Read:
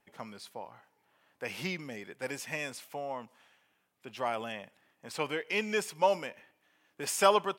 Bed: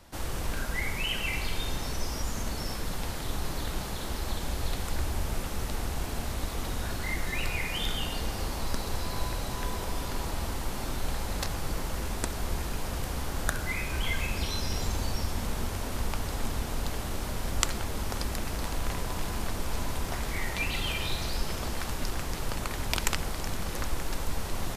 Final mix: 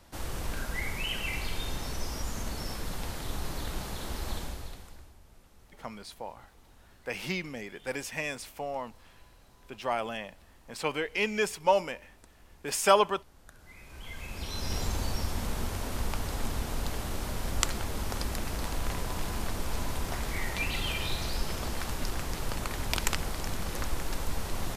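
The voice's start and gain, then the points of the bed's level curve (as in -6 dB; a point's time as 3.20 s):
5.65 s, +2.5 dB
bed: 4.38 s -2.5 dB
5.18 s -25.5 dB
13.44 s -25.5 dB
14.73 s -1 dB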